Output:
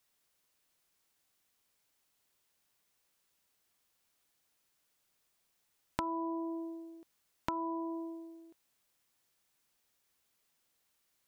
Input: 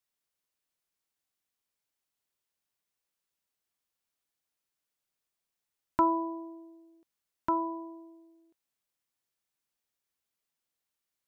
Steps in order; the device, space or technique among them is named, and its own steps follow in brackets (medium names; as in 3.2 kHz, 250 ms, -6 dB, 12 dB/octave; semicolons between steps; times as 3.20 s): serial compression, leveller first (compression 2.5:1, threshold -32 dBFS, peak gain reduction 8.5 dB; compression 4:1, threshold -45 dBFS, peak gain reduction 15 dB); trim +9.5 dB